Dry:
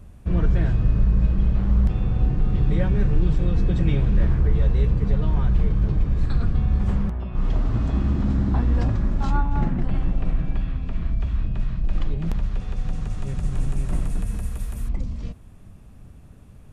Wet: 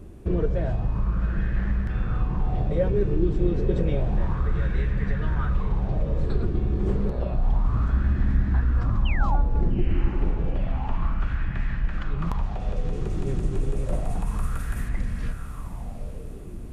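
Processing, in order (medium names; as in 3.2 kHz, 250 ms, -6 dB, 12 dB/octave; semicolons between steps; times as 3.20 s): 7.32–10.08 s: bass shelf 130 Hz +11.5 dB; compression 3:1, threshold -23 dBFS, peak gain reduction 13 dB; 9.05–9.36 s: painted sound fall 730–3200 Hz -36 dBFS; echo that smears into a reverb 878 ms, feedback 57%, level -8 dB; sweeping bell 0.3 Hz 350–1800 Hz +16 dB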